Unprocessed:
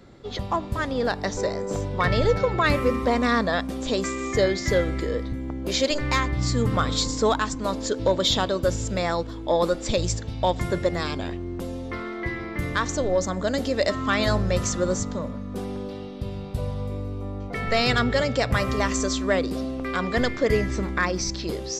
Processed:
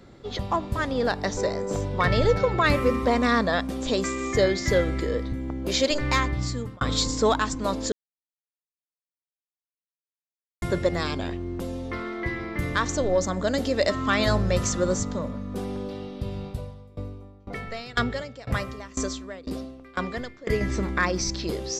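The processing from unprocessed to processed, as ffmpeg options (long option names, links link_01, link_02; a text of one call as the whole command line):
ffmpeg -i in.wav -filter_complex "[0:a]asettb=1/sr,asplit=3[link_01][link_02][link_03];[link_01]atrim=end=16.474[link_04];[link_02]atrim=start=16.47:end=20.61,asetpts=PTS-STARTPTS,afade=type=in:duration=0.004:curve=qsin,afade=type=out:start_time=4.136:duration=0.004:curve=qsin,aeval=exprs='val(0)*pow(10,-23*if(lt(mod(2*n/s,1),2*abs(2)/1000),1-mod(2*n/s,1)/(2*abs(2)/1000),(mod(2*n/s,1)-2*abs(2)/1000)/(1-2*abs(2)/1000))/20)':channel_layout=same[link_05];[link_03]atrim=start=20.606[link_06];[link_04][link_05]acrossfade=duration=0.004:curve1=hsin:curve2=qsin[link_07];[link_07][link_06]acrossfade=duration=0.004:curve1=qsin:curve2=hsin,asplit=4[link_08][link_09][link_10][link_11];[link_08]atrim=end=6.81,asetpts=PTS-STARTPTS,afade=type=out:start_time=6.25:duration=0.56[link_12];[link_09]atrim=start=6.81:end=7.92,asetpts=PTS-STARTPTS,afade=type=in:duration=0.004:curve=hsin,afade=type=out:start_time=1.106:duration=0.004:curve=hsin[link_13];[link_10]atrim=start=7.92:end=10.62,asetpts=PTS-STARTPTS,volume=0[link_14];[link_11]atrim=start=10.62,asetpts=PTS-STARTPTS,afade=type=in:duration=0.004:curve=hsin[link_15];[link_12][link_13][link_14][link_15]concat=n=4:v=0:a=1" out.wav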